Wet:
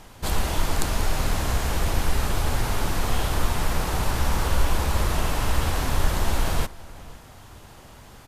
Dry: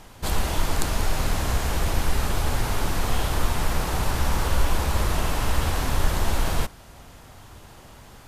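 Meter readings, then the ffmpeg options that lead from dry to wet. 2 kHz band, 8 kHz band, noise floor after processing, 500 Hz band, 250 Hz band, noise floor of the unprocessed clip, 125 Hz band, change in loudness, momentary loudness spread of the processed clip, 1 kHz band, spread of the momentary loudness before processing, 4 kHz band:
0.0 dB, 0.0 dB, -46 dBFS, 0.0 dB, 0.0 dB, -47 dBFS, 0.0 dB, 0.0 dB, 3 LU, 0.0 dB, 2 LU, 0.0 dB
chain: -filter_complex "[0:a]asplit=2[a][b];[b]adelay=507.3,volume=-20dB,highshelf=f=4k:g=-11.4[c];[a][c]amix=inputs=2:normalize=0"

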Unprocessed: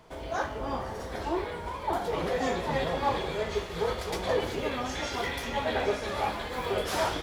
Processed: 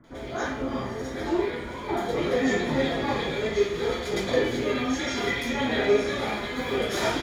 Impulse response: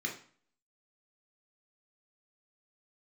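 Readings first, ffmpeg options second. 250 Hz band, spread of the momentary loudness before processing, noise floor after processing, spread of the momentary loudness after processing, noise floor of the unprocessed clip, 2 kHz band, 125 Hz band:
+8.5 dB, 5 LU, -36 dBFS, 7 LU, -38 dBFS, +5.0 dB, +3.0 dB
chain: -filter_complex "[0:a]flanger=delay=3.5:depth=1.5:regen=62:speed=1.8:shape=sinusoidal,acrossover=split=1400[a][b];[b]adelay=40[c];[a][c]amix=inputs=2:normalize=0[d];[1:a]atrim=start_sample=2205[e];[d][e]afir=irnorm=-1:irlink=0,volume=6dB"

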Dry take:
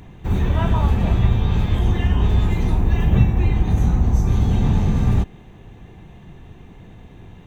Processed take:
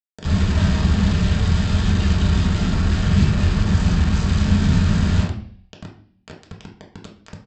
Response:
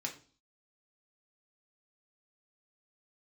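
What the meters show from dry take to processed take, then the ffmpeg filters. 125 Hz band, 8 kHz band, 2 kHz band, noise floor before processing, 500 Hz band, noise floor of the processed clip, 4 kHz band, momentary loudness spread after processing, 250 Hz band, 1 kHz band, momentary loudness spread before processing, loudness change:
0.0 dB, n/a, +5.5 dB, -43 dBFS, -1.5 dB, -58 dBFS, +8.5 dB, 3 LU, +3.0 dB, -1.5 dB, 3 LU, +0.5 dB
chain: -filter_complex "[0:a]equalizer=f=950:t=o:w=2.8:g=-14.5,bandreject=f=50:t=h:w=6,bandreject=f=100:t=h:w=6,bandreject=f=150:t=h:w=6,asplit=2[a][b];[b]acompressor=threshold=-26dB:ratio=16,volume=2dB[c];[a][c]amix=inputs=2:normalize=0,aeval=exprs='0.631*(cos(1*acos(clip(val(0)/0.631,-1,1)))-cos(1*PI/2))+0.0447*(cos(3*acos(clip(val(0)/0.631,-1,1)))-cos(3*PI/2))+0.0178*(cos(4*acos(clip(val(0)/0.631,-1,1)))-cos(4*PI/2))':c=same,aresample=16000,acrusher=bits=4:mix=0:aa=0.000001,aresample=44100[d];[1:a]atrim=start_sample=2205,asetrate=31311,aresample=44100[e];[d][e]afir=irnorm=-1:irlink=0"

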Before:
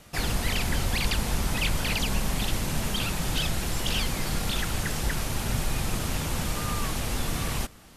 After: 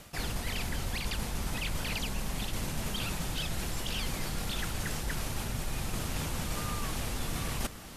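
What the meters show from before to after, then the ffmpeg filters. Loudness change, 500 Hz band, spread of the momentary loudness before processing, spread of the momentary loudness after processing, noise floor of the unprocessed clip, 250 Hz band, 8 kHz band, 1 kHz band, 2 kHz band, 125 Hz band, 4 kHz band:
-6.5 dB, -6.0 dB, 3 LU, 2 LU, -49 dBFS, -6.5 dB, -6.0 dB, -6.0 dB, -6.5 dB, -6.5 dB, -6.5 dB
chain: -af "areverse,acompressor=threshold=-36dB:ratio=6,areverse,acrusher=bits=9:mix=0:aa=0.000001,volume=5.5dB" -ar 32000 -c:a libmp3lame -b:a 96k

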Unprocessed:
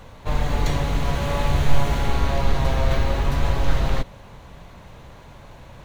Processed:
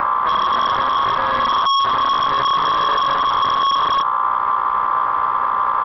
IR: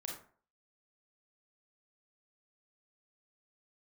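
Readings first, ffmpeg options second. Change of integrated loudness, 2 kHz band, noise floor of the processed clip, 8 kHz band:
+7.0 dB, +7.0 dB, -19 dBFS, n/a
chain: -filter_complex "[0:a]firequalizer=gain_entry='entry(480,0);entry(910,-9);entry(2800,-20)':delay=0.05:min_phase=1,acompressor=mode=upward:threshold=-32dB:ratio=2.5,aeval=exprs='val(0)+0.0282*(sin(2*PI*60*n/s)+sin(2*PI*2*60*n/s)/2+sin(2*PI*3*60*n/s)/3+sin(2*PI*4*60*n/s)/4+sin(2*PI*5*60*n/s)/5)':c=same,aeval=exprs='val(0)*sin(2*PI*1100*n/s)':c=same,aresample=11025,asoftclip=type=tanh:threshold=-22dB,aresample=44100,acrossover=split=350|3000[a][b][c];[b]acompressor=threshold=-29dB:ratio=4[d];[a][d][c]amix=inputs=3:normalize=0,alimiter=level_in=29.5dB:limit=-1dB:release=50:level=0:latency=1,volume=-8.5dB"

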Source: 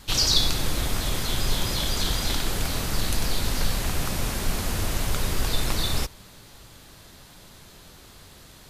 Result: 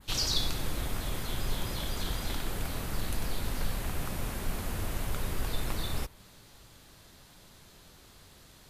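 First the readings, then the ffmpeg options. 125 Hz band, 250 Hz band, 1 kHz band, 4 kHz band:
-7.0 dB, -7.0 dB, -7.5 dB, -10.0 dB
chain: -af "adynamicequalizer=threshold=0.00794:dfrequency=5400:dqfactor=0.81:tfrequency=5400:tqfactor=0.81:attack=5:release=100:ratio=0.375:range=3.5:mode=cutabove:tftype=bell,volume=-7dB"

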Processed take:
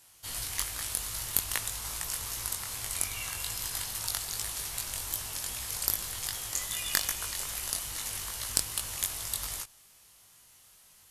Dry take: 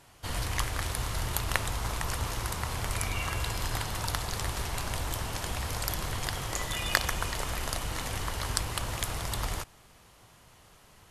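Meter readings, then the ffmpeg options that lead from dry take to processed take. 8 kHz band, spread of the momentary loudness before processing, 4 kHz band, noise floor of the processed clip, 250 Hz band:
+5.0 dB, 4 LU, -0.5 dB, -59 dBFS, -11.0 dB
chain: -af "crystalizer=i=7.5:c=0,aeval=exprs='3.76*(cos(1*acos(clip(val(0)/3.76,-1,1)))-cos(1*PI/2))+0.75*(cos(2*acos(clip(val(0)/3.76,-1,1)))-cos(2*PI/2))':c=same,flanger=delay=18:depth=3.8:speed=2.5,volume=-10.5dB"

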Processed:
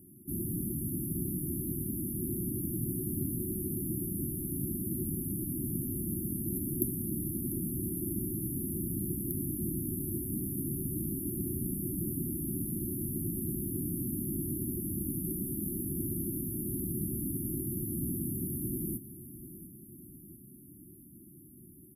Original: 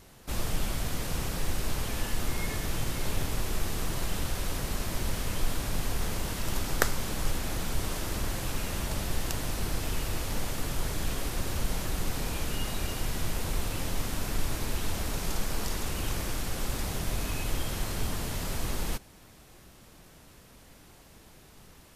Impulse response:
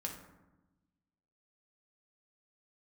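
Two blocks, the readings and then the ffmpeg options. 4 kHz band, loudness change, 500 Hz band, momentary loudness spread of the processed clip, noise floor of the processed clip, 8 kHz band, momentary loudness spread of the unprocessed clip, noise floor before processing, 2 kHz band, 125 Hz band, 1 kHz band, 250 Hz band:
under -40 dB, -1.0 dB, -3.5 dB, 13 LU, -53 dBFS, -2.5 dB, 1 LU, -54 dBFS, under -40 dB, -1.0 dB, under -40 dB, +5.0 dB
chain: -filter_complex "[0:a]highpass=150,aecho=1:1:696|1392|2088|2784|3480|4176:0.188|0.105|0.0591|0.0331|0.0185|0.0104,acrossover=split=350|6700[a][b][c];[c]volume=23dB,asoftclip=hard,volume=-23dB[d];[a][b][d]amix=inputs=3:normalize=0,afftfilt=real='re*(1-between(b*sr/4096,380,10000))':imag='im*(1-between(b*sr/4096,380,10000))':win_size=4096:overlap=0.75,volume=5.5dB"

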